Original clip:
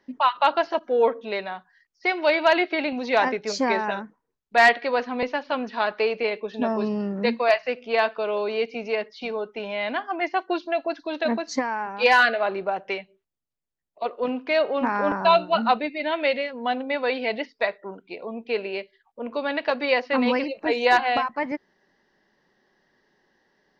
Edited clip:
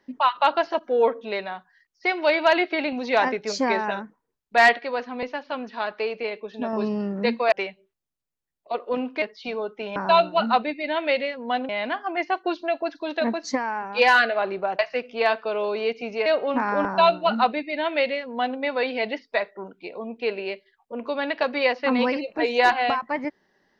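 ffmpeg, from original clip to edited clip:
-filter_complex "[0:a]asplit=9[a][b][c][d][e][f][g][h][i];[a]atrim=end=4.792[j];[b]atrim=start=4.788:end=6.732,asetpts=PTS-STARTPTS,volume=-4dB[k];[c]atrim=start=6.728:end=7.522[l];[d]atrim=start=12.828:end=14.532[m];[e]atrim=start=8.988:end=9.732[n];[f]atrim=start=15.118:end=16.852[o];[g]atrim=start=9.728:end=12.832[p];[h]atrim=start=7.518:end=8.992[q];[i]atrim=start=14.528[r];[j][k]acrossfade=d=0.004:c1=hsin:c2=hsin[s];[s][l]acrossfade=d=0.004:c1=hsin:c2=hsin[t];[t][m]acrossfade=d=0.004:c1=hsin:c2=hsin[u];[u][n]acrossfade=d=0.004:c1=hsin:c2=hsin[v];[v][o]acrossfade=d=0.004:c1=hsin:c2=hsin[w];[w][p]acrossfade=d=0.004:c1=hsin:c2=hsin[x];[x][q]acrossfade=d=0.004:c1=hsin:c2=hsin[y];[y][r]acrossfade=d=0.004:c1=hsin:c2=hsin"

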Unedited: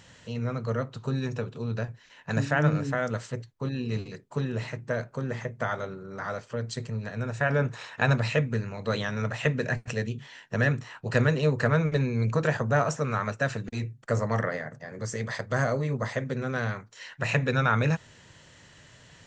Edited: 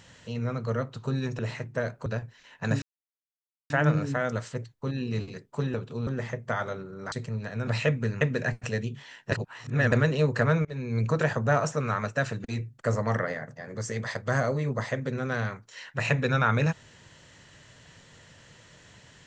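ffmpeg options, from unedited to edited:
-filter_complex "[0:a]asplit=12[a][b][c][d][e][f][g][h][i][j][k][l];[a]atrim=end=1.392[m];[b]atrim=start=4.518:end=5.192[n];[c]atrim=start=1.718:end=2.48,asetpts=PTS-STARTPTS,afade=t=out:st=0.758:d=0.004:c=hsin,apad=pad_dur=0.88[o];[d]atrim=start=2.48:end=4.522,asetpts=PTS-STARTPTS,afade=t=in:d=0.004:c=hsin[p];[e]atrim=start=1.388:end=1.722[q];[f]atrim=start=5.188:end=6.242[r];[g]atrim=start=6.728:end=7.282[s];[h]atrim=start=8.168:end=8.712[t];[i]atrim=start=9.448:end=10.562[u];[j]atrim=start=10.558:end=11.162,asetpts=PTS-STARTPTS,areverse[v];[k]atrim=start=11.158:end=11.89,asetpts=PTS-STARTPTS,afade=t=out:st=0.728:d=0.004:c=hsin:silence=0.0668344[w];[l]atrim=start=11.89,asetpts=PTS-STARTPTS,afade=t=in:d=0.37:silence=0.0668344[x];[m][n]acrossfade=d=0.004:c1=hsin:c2=hsin[y];[o][p]concat=n=2:v=0:a=1[z];[y][z]acrossfade=d=0.004:c1=hsin:c2=hsin[aa];[aa][q]acrossfade=d=0.004:c1=hsin:c2=hsin[ab];[ab][r]acrossfade=d=0.004:c1=hsin:c2=hsin[ac];[ac][s]acrossfade=d=0.004:c1=hsin:c2=hsin[ad];[ad][t]acrossfade=d=0.004:c1=hsin:c2=hsin[ae];[ae][u]acrossfade=d=0.004:c1=hsin:c2=hsin[af];[af][v]acrossfade=d=0.004:c1=hsin:c2=hsin[ag];[w][x]concat=n=2:v=0:a=1[ah];[ag][ah]acrossfade=d=0.004:c1=hsin:c2=hsin"

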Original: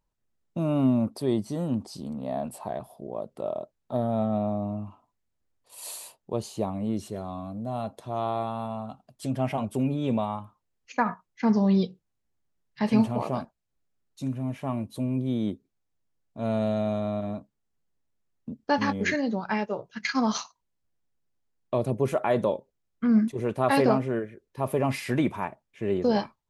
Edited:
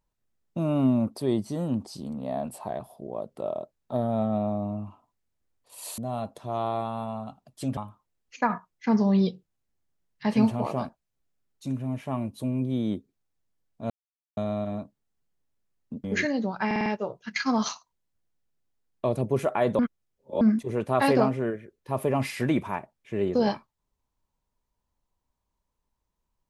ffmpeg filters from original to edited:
-filter_complex "[0:a]asplit=12[a][b][c][d][e][f][g][h][i][j][k][l];[a]atrim=end=5.982[m];[b]atrim=start=7.598:end=9.392[n];[c]atrim=start=10.328:end=16.46,asetpts=PTS-STARTPTS,afade=t=out:st=6.128:d=0.004:c=hsin[o];[d]atrim=start=16.46:end=16.93,asetpts=PTS-STARTPTS,volume=0[p];[e]atrim=start=16.93:end=18.602,asetpts=PTS-STARTPTS,afade=t=in:d=0.004:c=hsin[q];[f]atrim=start=18.928:end=19.602[r];[g]atrim=start=19.548:end=19.602[s];[h]atrim=start=19.548:end=19.602[t];[i]atrim=start=19.548:end=19.602[u];[j]atrim=start=19.548:end=22.482[v];[k]atrim=start=22.478:end=23.102,asetpts=PTS-STARTPTS,areverse[w];[l]atrim=start=23.098[x];[m][n]acrossfade=d=0.004:c1=hsin:c2=hsin[y];[o][p][q]concat=n=3:v=0:a=1[z];[y][z]acrossfade=d=0.004:c1=hsin:c2=hsin[aa];[aa][r]acrossfade=d=0.004:c1=hsin:c2=hsin[ab];[ab][s]acrossfade=d=0.004:c1=hsin:c2=hsin[ac];[ac][t]acrossfade=d=0.004:c1=hsin:c2=hsin[ad];[ad][u]acrossfade=d=0.004:c1=hsin:c2=hsin[ae];[ae][v]acrossfade=d=0.004:c1=hsin:c2=hsin[af];[af][w]acrossfade=d=0.004:c1=hsin:c2=hsin[ag];[ag][x]acrossfade=d=0.004:c1=hsin:c2=hsin"

